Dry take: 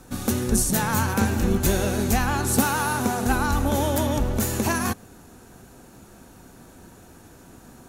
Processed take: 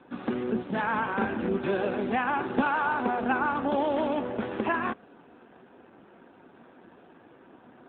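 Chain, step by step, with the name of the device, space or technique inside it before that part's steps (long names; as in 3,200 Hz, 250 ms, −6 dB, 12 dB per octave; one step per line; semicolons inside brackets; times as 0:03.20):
0:03.70–0:04.21: dynamic equaliser 2,500 Hz, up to +3 dB, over −55 dBFS, Q 5.8
telephone (band-pass filter 280–3,100 Hz; AMR narrowband 7.4 kbit/s 8,000 Hz)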